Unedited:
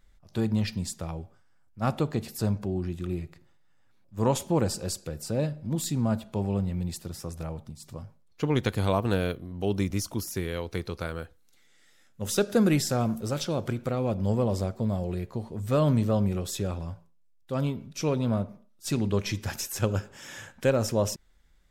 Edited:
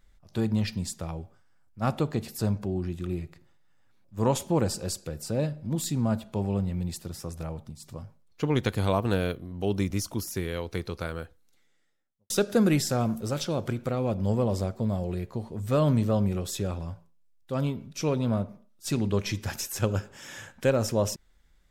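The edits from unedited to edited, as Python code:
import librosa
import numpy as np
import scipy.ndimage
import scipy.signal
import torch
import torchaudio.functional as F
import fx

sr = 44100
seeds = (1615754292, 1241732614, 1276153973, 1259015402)

y = fx.studio_fade_out(x, sr, start_s=11.16, length_s=1.14)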